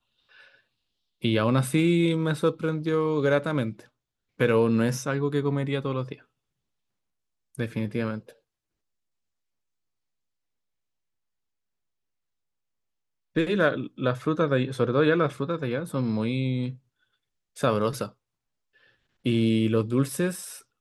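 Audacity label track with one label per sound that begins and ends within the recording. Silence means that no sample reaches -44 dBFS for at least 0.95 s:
7.550000	8.310000	sound
13.360000	18.100000	sound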